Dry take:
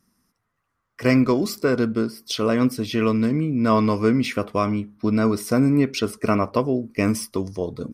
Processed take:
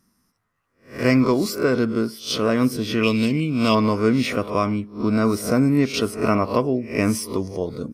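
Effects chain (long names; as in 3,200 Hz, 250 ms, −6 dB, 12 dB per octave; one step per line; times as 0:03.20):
peak hold with a rise ahead of every peak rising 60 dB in 0.35 s
0:03.03–0:03.75: high shelf with overshoot 2,100 Hz +8 dB, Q 3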